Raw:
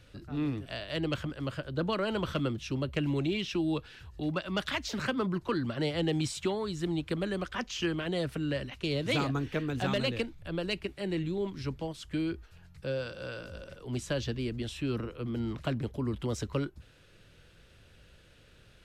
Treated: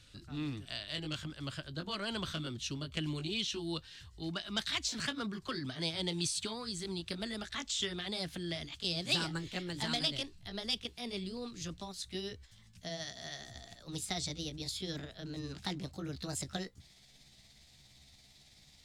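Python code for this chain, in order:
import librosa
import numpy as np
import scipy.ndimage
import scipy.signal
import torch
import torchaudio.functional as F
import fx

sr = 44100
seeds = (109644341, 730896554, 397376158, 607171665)

y = fx.pitch_glide(x, sr, semitones=5.5, runs='starting unshifted')
y = fx.graphic_eq_10(y, sr, hz=(500, 4000, 8000), db=(-7, 8, 10))
y = y * librosa.db_to_amplitude(-5.0)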